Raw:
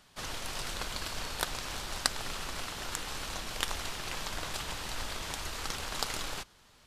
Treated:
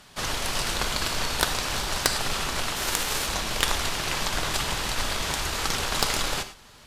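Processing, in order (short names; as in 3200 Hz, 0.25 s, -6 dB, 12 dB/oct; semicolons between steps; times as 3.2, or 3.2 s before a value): 2.75–3.26 spectral whitening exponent 0.6; non-linear reverb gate 0.13 s flat, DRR 9 dB; added harmonics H 4 -6 dB, 5 -6 dB, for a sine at -4.5 dBFS; gain -1 dB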